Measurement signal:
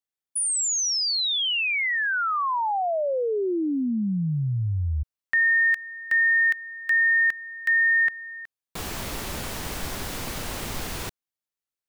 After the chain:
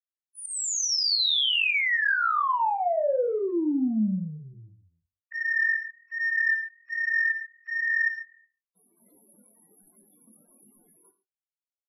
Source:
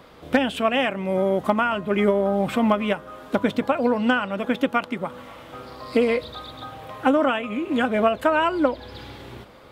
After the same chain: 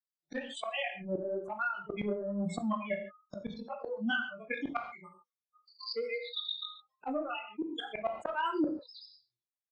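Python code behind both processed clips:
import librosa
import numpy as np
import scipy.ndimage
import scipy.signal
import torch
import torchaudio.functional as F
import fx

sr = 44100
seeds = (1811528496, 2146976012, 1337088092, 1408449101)

y = fx.bin_expand(x, sr, power=3.0)
y = scipy.signal.sosfilt(scipy.signal.ellip(4, 1.0, 60, [200.0, 8300.0], 'bandpass', fs=sr, output='sos'), y)
y = fx.gate_hold(y, sr, open_db=-54.0, close_db=-60.0, hold_ms=64.0, range_db=-18, attack_ms=7.4, release_ms=232.0)
y = fx.noise_reduce_blind(y, sr, reduce_db=23)
y = fx.transient(y, sr, attack_db=7, sustain_db=-10)
y = fx.chorus_voices(y, sr, voices=2, hz=1.2, base_ms=21, depth_ms=3.0, mix_pct=45)
y = fx.spec_topn(y, sr, count=64)
y = 10.0 ** (-13.0 / 20.0) * np.tanh(y / 10.0 ** (-13.0 / 20.0))
y = fx.auto_swell(y, sr, attack_ms=695.0)
y = fx.rev_gated(y, sr, seeds[0], gate_ms=160, shape='falling', drr_db=9.5)
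y = fx.env_flatten(y, sr, amount_pct=50)
y = F.gain(torch.from_numpy(y), 4.0).numpy()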